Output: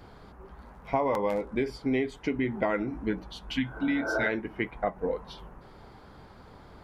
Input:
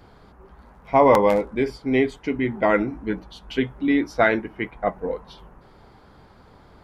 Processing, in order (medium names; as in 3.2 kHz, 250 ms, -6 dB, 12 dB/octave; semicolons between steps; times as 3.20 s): spectral replace 3.55–4.24 s, 280–1600 Hz both; compression 5:1, threshold -25 dBFS, peak gain reduction 13.5 dB